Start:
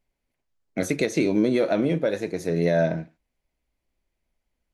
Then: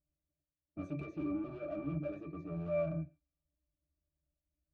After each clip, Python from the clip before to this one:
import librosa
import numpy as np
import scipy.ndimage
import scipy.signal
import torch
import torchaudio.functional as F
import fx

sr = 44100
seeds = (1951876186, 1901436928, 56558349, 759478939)

y = np.clip(10.0 ** (28.5 / 20.0) * x, -1.0, 1.0) / 10.0 ** (28.5 / 20.0)
y = fx.octave_resonator(y, sr, note='D', decay_s=0.17)
y = fx.env_lowpass(y, sr, base_hz=780.0, full_db=-38.0)
y = y * 10.0 ** (2.5 / 20.0)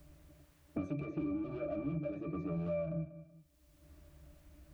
y = fx.dynamic_eq(x, sr, hz=1400.0, q=0.85, threshold_db=-52.0, ratio=4.0, max_db=-4)
y = fx.echo_feedback(y, sr, ms=189, feedback_pct=21, wet_db=-19.5)
y = fx.band_squash(y, sr, depth_pct=100)
y = y * 10.0 ** (1.0 / 20.0)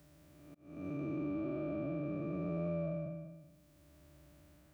y = fx.spec_blur(x, sr, span_ms=457.0)
y = scipy.signal.sosfilt(scipy.signal.butter(2, 93.0, 'highpass', fs=sr, output='sos'), y)
y = fx.auto_swell(y, sr, attack_ms=329.0)
y = y * 10.0 ** (2.5 / 20.0)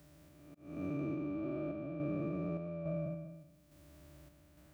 y = fx.rider(x, sr, range_db=10, speed_s=0.5)
y = fx.tremolo_random(y, sr, seeds[0], hz=3.5, depth_pct=55)
y = y * 10.0 ** (2.5 / 20.0)